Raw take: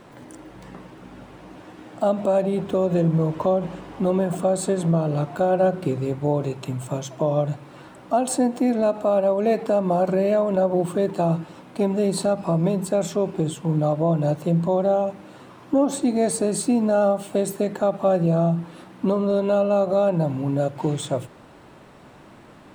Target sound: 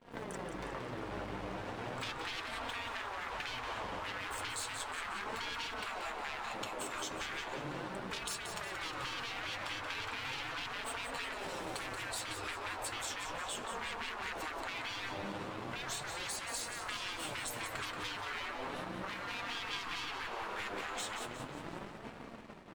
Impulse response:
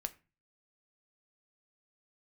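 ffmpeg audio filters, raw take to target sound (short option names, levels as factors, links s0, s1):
-filter_complex "[0:a]asettb=1/sr,asplit=3[s0][s1][s2];[s0]atrim=end=11.304[s3];[s1]atrim=start=11.3:end=12.03,asetpts=PTS-STARTPTS,afade=t=in:d=0.004:c=qsin,afade=t=out:st=0.726:d=0.004:c=qsin,bass=f=250:g=8,treble=f=4000:g=11[s4];[s2]atrim=start=12.026[s5];[s3][s4]acrossfade=d=0.004:c1=hsin:c2=qsin[s6];[s6][s5]acrossfade=d=0.004:c1=qsin:c2=hsin,aeval=exprs='sgn(val(0))*max(abs(val(0))-0.00422,0)':c=same,aemphasis=mode=reproduction:type=cd,asoftclip=type=tanh:threshold=0.0473,afftfilt=real='re*lt(hypot(re,im),0.0282)':imag='im*lt(hypot(re,im),0.0282)':win_size=1024:overlap=0.75,dynaudnorm=f=170:g=13:m=2,agate=range=0.0224:threshold=0.00562:ratio=3:detection=peak,acompressor=threshold=0.00282:ratio=8,flanger=delay=4.2:depth=5.8:regen=46:speed=0.36:shape=sinusoidal,aecho=1:1:180|360|540|720|900:0.398|0.187|0.0879|0.0413|0.0194,volume=6.68"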